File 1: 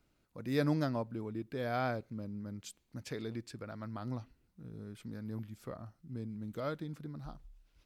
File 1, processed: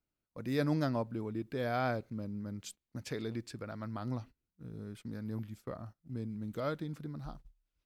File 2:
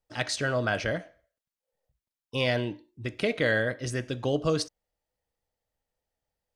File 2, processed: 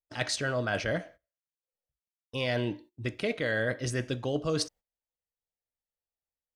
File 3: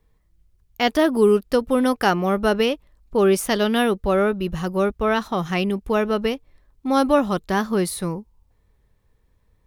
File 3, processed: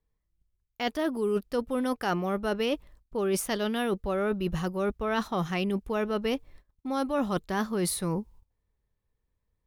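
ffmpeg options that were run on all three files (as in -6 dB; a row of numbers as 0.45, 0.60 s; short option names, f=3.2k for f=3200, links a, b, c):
-af "agate=range=-18dB:threshold=-51dB:ratio=16:detection=peak,areverse,acompressor=threshold=-28dB:ratio=6,areverse,volume=2dB"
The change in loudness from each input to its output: +1.0, -2.5, -9.0 LU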